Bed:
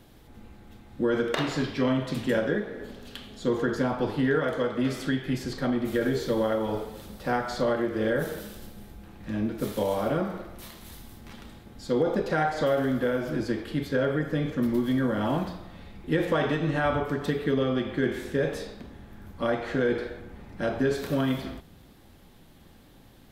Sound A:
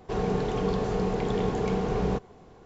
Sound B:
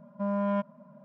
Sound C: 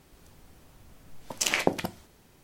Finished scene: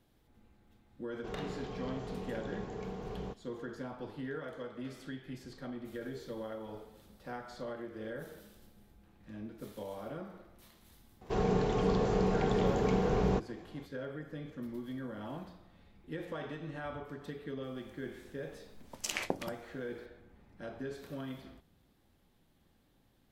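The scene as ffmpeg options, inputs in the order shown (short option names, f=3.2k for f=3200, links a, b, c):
-filter_complex "[1:a]asplit=2[a][b];[0:a]volume=-16dB[c];[a]atrim=end=2.65,asetpts=PTS-STARTPTS,volume=-14.5dB,afade=t=in:d=0.004:c=hsin,afade=t=out:st=2.646:d=0.004:c=hsin,adelay=1150[d];[b]atrim=end=2.65,asetpts=PTS-STARTPTS,volume=-2.5dB,afade=t=in:d=0.004:c=hsin,afade=t=out:st=2.646:d=0.004:c=hsin,adelay=11210[e];[3:a]atrim=end=2.43,asetpts=PTS-STARTPTS,volume=-10dB,afade=t=in:d=0.004:c=hsin,afade=t=out:st=2.426:d=0.004:c=hsin,adelay=17630[f];[c][d][e][f]amix=inputs=4:normalize=0"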